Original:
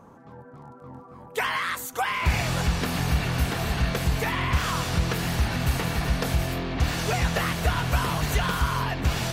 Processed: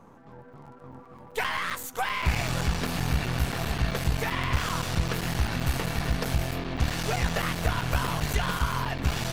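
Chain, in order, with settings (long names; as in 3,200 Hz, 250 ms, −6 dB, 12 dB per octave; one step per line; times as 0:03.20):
gain on one half-wave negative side −7 dB
regular buffer underruns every 0.13 s, samples 256, zero, from 0:00.53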